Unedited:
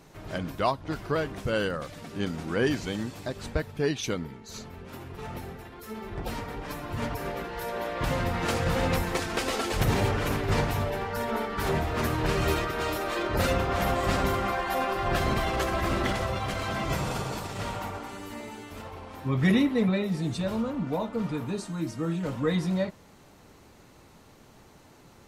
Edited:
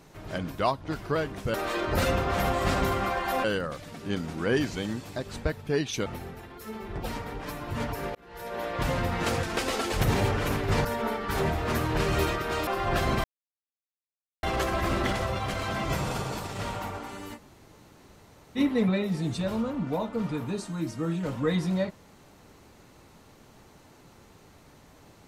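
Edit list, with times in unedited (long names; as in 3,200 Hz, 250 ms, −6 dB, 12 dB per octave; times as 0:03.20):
0:04.16–0:05.28: remove
0:07.37–0:07.87: fade in
0:08.65–0:09.23: remove
0:10.65–0:11.14: remove
0:12.96–0:14.86: move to 0:01.54
0:15.43: splice in silence 1.19 s
0:18.36–0:19.58: fill with room tone, crossfade 0.06 s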